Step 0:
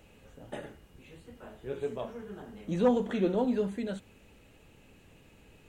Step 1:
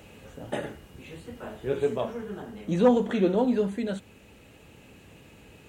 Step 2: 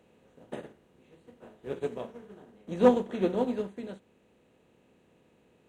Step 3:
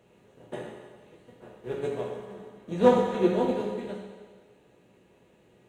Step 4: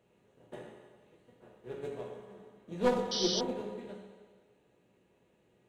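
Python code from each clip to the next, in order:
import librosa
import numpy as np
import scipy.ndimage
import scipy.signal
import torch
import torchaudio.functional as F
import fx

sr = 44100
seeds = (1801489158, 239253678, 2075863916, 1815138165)

y1 = scipy.signal.sosfilt(scipy.signal.butter(2, 58.0, 'highpass', fs=sr, output='sos'), x)
y1 = fx.rider(y1, sr, range_db=4, speed_s=2.0)
y1 = F.gain(torch.from_numpy(y1), 5.0).numpy()
y2 = fx.bin_compress(y1, sr, power=0.6)
y2 = fx.upward_expand(y2, sr, threshold_db=-32.0, expansion=2.5)
y3 = fx.rev_fdn(y2, sr, rt60_s=1.6, lf_ratio=0.75, hf_ratio=0.95, size_ms=49.0, drr_db=-2.0)
y4 = fx.tracing_dist(y3, sr, depth_ms=0.15)
y4 = fx.spec_paint(y4, sr, seeds[0], shape='noise', start_s=3.11, length_s=0.3, low_hz=2900.0, high_hz=6100.0, level_db=-25.0)
y4 = F.gain(torch.from_numpy(y4), -9.0).numpy()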